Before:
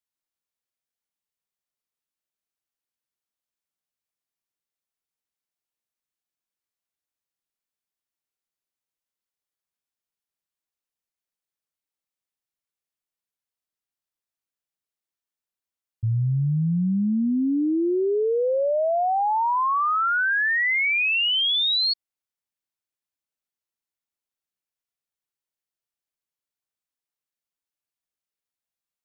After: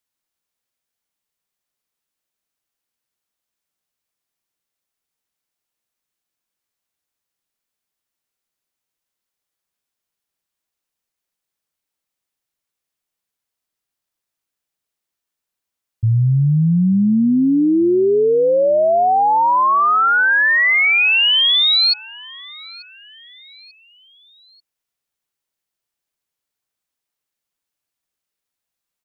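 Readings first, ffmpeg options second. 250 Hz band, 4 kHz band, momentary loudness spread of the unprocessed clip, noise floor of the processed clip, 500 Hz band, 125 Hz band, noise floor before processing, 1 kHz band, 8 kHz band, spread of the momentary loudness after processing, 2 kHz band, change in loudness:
+8.0 dB, +8.0 dB, 4 LU, -83 dBFS, +8.0 dB, +8.0 dB, under -85 dBFS, +8.0 dB, n/a, 11 LU, +8.0 dB, +8.0 dB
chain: -af "aecho=1:1:889|1778|2667:0.075|0.033|0.0145,volume=8dB"

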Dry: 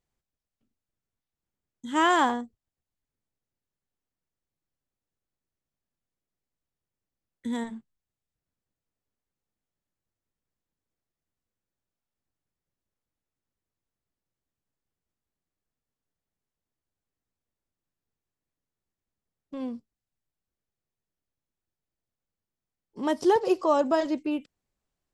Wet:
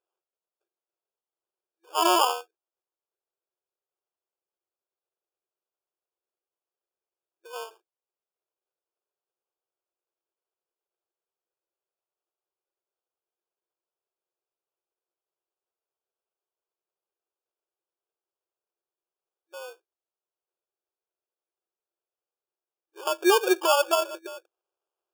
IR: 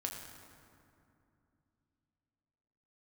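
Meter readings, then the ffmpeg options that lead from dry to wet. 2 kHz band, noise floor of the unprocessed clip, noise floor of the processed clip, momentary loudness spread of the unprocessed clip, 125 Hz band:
+0.5 dB, under -85 dBFS, under -85 dBFS, 20 LU, n/a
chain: -af "afftfilt=real='re*between(b*sr/4096,330,1600)':imag='im*between(b*sr/4096,330,1600)':win_size=4096:overlap=0.75,acrusher=samples=22:mix=1:aa=0.000001,volume=1.5dB"

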